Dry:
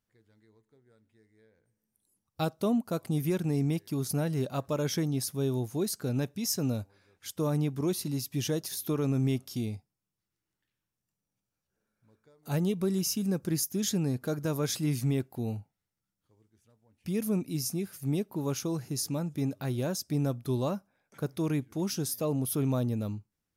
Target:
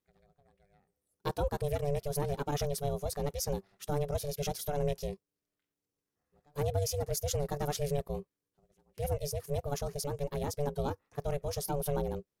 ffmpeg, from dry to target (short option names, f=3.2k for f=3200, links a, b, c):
-af "atempo=1.9,aeval=exprs='val(0)*sin(2*PI*290*n/s)':c=same"